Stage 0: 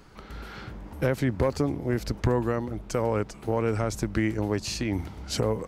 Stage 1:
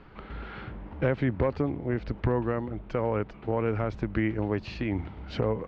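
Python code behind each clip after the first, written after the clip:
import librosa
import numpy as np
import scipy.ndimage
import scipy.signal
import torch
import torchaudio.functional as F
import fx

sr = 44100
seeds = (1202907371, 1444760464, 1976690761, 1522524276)

y = fx.rider(x, sr, range_db=4, speed_s=2.0)
y = scipy.signal.sosfilt(scipy.signal.butter(4, 3200.0, 'lowpass', fs=sr, output='sos'), y)
y = y * 10.0 ** (-2.0 / 20.0)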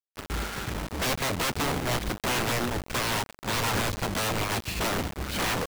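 y = (np.mod(10.0 ** (28.0 / 20.0) * x + 1.0, 2.0) - 1.0) / 10.0 ** (28.0 / 20.0)
y = fx.quant_companded(y, sr, bits=2)
y = fx.upward_expand(y, sr, threshold_db=-43.0, expansion=1.5)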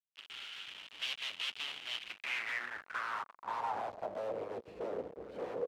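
y = fx.filter_sweep_bandpass(x, sr, from_hz=3000.0, to_hz=480.0, start_s=1.95, end_s=4.46, q=4.9)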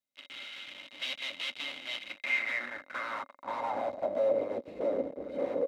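y = fx.small_body(x, sr, hz=(270.0, 560.0, 2100.0, 3800.0), ring_ms=45, db=15)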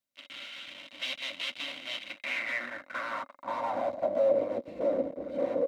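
y = fx.notch_comb(x, sr, f0_hz=420.0)
y = y * 10.0 ** (3.0 / 20.0)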